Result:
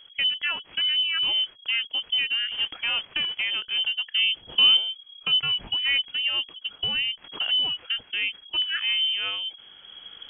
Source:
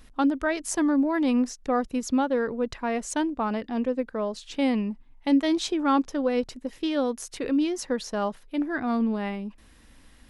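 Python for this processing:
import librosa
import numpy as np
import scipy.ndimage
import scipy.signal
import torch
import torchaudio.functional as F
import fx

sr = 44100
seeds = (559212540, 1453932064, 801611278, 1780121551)

y = fx.dead_time(x, sr, dead_ms=0.051)
y = fx.recorder_agc(y, sr, target_db=-16.0, rise_db_per_s=6.9, max_gain_db=30)
y = fx.quant_companded(y, sr, bits=4, at=(2.51, 3.42))
y = fx.peak_eq(y, sr, hz=180.0, db=10.0, octaves=2.9, at=(4.06, 4.77))
y = fx.freq_invert(y, sr, carrier_hz=3300)
y = fx.band_squash(y, sr, depth_pct=40, at=(7.24, 7.7))
y = F.gain(torch.from_numpy(y), -2.0).numpy()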